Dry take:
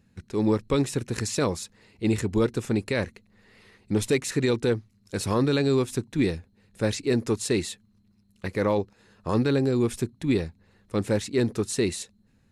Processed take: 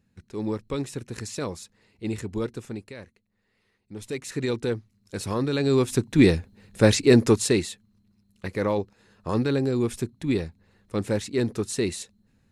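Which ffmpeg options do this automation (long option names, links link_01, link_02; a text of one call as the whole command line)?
ffmpeg -i in.wav -af "volume=17.5dB,afade=type=out:start_time=2.47:duration=0.5:silence=0.334965,afade=type=in:start_time=3.94:duration=0.55:silence=0.237137,afade=type=in:start_time=5.52:duration=0.79:silence=0.281838,afade=type=out:start_time=7.22:duration=0.46:silence=0.354813" out.wav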